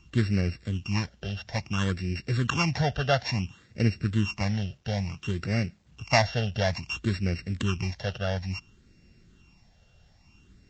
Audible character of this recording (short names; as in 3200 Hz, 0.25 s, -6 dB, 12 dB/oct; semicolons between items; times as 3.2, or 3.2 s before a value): a buzz of ramps at a fixed pitch in blocks of 16 samples; phasing stages 8, 0.58 Hz, lowest notch 300–1000 Hz; a quantiser's noise floor 12-bit, dither none; Vorbis